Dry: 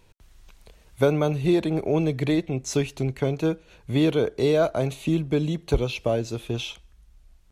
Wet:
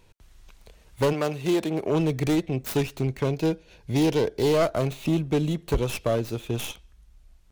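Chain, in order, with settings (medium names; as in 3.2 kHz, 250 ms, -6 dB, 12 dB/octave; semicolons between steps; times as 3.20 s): tracing distortion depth 0.38 ms; 1.12–1.90 s: high-pass 440 Hz -> 200 Hz 6 dB/octave; hard clipper -16.5 dBFS, distortion -15 dB; 3.32–4.52 s: graphic EQ with 31 bands 1.25 kHz -9 dB, 5 kHz +6 dB, 8 kHz -3 dB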